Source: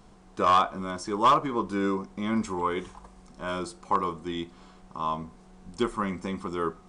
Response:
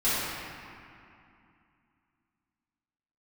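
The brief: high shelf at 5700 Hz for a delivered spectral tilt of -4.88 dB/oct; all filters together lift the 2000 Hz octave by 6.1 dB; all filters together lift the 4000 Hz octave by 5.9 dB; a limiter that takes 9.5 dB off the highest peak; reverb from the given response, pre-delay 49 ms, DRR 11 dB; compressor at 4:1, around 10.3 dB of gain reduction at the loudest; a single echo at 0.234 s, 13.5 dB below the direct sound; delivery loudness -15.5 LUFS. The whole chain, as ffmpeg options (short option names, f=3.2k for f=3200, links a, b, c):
-filter_complex "[0:a]equalizer=f=2k:t=o:g=7.5,equalizer=f=4k:t=o:g=6.5,highshelf=f=5.7k:g=-5.5,acompressor=threshold=-26dB:ratio=4,alimiter=level_in=1dB:limit=-24dB:level=0:latency=1,volume=-1dB,aecho=1:1:234:0.211,asplit=2[a][b];[1:a]atrim=start_sample=2205,adelay=49[c];[b][c]afir=irnorm=-1:irlink=0,volume=-25dB[d];[a][d]amix=inputs=2:normalize=0,volume=20.5dB"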